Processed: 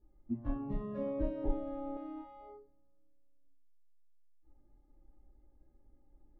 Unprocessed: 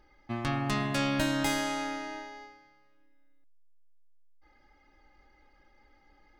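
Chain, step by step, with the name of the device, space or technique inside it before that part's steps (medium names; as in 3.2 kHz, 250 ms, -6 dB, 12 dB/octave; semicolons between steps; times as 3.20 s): television next door (compression 4:1, threshold -42 dBFS, peak gain reduction 15 dB; low-pass 340 Hz 12 dB/octave; reverberation RT60 0.45 s, pre-delay 8 ms, DRR -11 dB); spectral noise reduction 19 dB; 1.44–1.97 s: tilt EQ -3 dB/octave; trim +7 dB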